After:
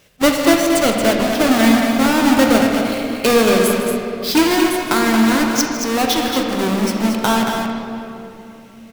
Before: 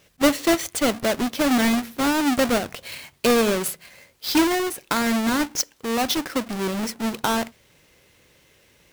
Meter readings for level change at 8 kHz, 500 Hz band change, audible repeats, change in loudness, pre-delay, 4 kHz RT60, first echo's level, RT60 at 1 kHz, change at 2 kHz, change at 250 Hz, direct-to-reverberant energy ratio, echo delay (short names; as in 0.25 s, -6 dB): +5.0 dB, +7.5 dB, 2, +7.0 dB, 18 ms, 1.8 s, -14.0 dB, 2.7 s, +7.0 dB, +8.0 dB, 0.0 dB, 0.158 s